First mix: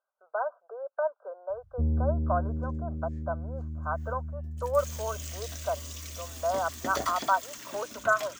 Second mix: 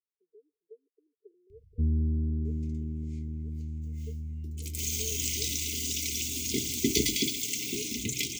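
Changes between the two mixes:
second sound +11.0 dB; master: add brick-wall FIR band-stop 450–2000 Hz

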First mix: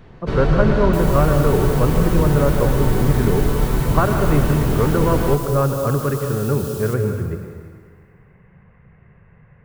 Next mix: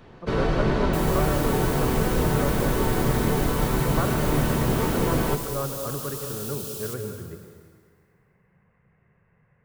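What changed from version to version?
speech -10.5 dB; master: add low shelf 110 Hz -9.5 dB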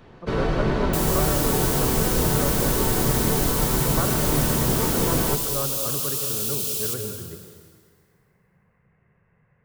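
second sound +9.5 dB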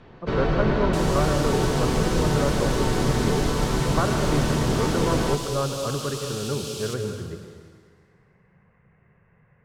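speech +4.0 dB; master: add LPF 5500 Hz 12 dB/oct

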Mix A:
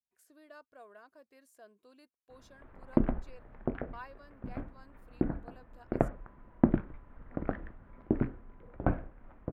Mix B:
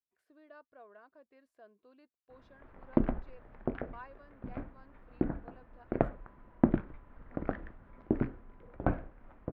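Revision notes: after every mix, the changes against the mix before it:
speech: add air absorption 410 m; master: add tone controls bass -2 dB, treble +6 dB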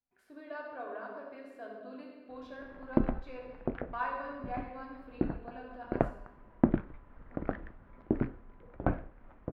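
speech +6.5 dB; reverb: on, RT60 1.3 s

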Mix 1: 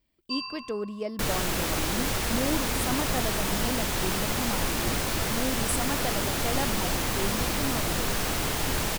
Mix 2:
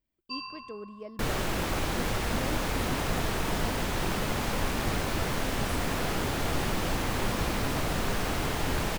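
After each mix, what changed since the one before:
speech -9.5 dB; master: add high shelf 3800 Hz -9.5 dB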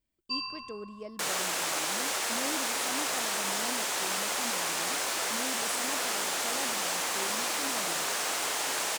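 second sound: add HPF 580 Hz 12 dB/oct; master: add bell 7800 Hz +10.5 dB 1.5 oct

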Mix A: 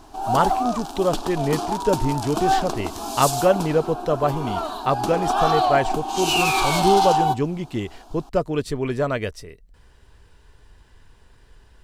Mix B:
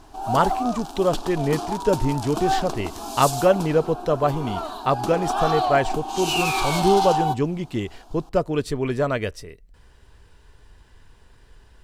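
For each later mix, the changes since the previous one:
speech: send on; background -3.0 dB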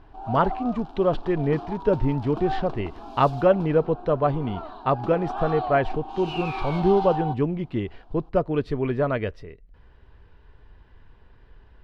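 background -5.5 dB; master: add air absorption 350 m

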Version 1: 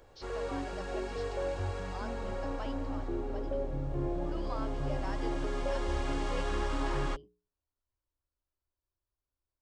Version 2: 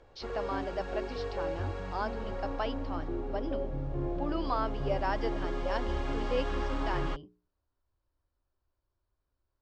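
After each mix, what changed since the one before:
speech +10.5 dB; master: add air absorption 100 m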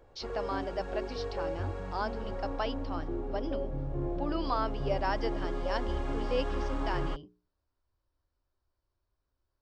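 background: add high shelf 2300 Hz -11 dB; master: remove air absorption 100 m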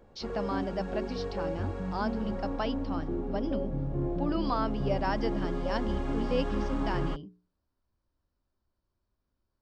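master: add bell 200 Hz +14 dB 0.67 oct

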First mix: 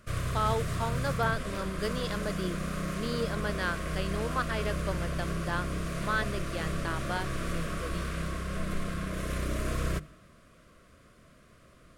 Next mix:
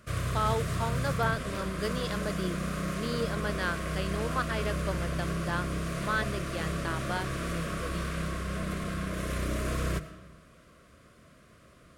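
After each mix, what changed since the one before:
background: send +10.5 dB; master: add HPF 44 Hz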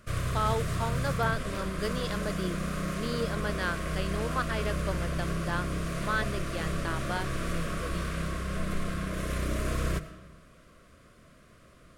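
master: remove HPF 44 Hz

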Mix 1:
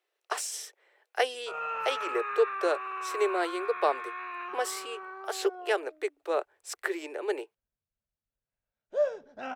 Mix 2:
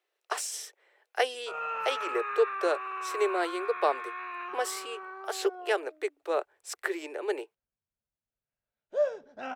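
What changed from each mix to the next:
master: add low shelf 64 Hz -8.5 dB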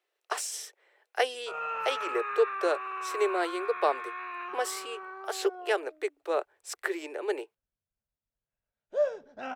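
master: add low shelf 64 Hz +8.5 dB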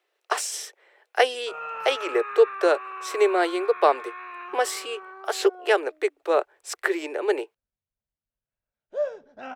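speech +7.5 dB; master: add high shelf 6100 Hz -4.5 dB

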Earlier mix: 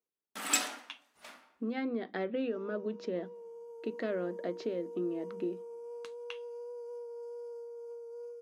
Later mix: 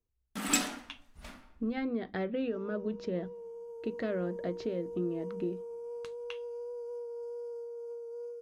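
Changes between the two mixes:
speech: remove HPF 220 Hz 24 dB/oct; background: remove HPF 470 Hz 12 dB/oct

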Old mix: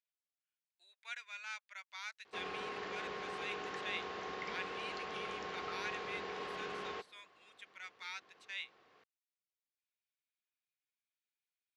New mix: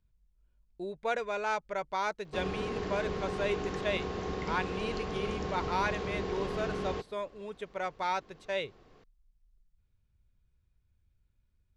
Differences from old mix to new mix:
speech: remove ladder high-pass 1600 Hz, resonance 25%; background: remove band-pass 2000 Hz, Q 0.62

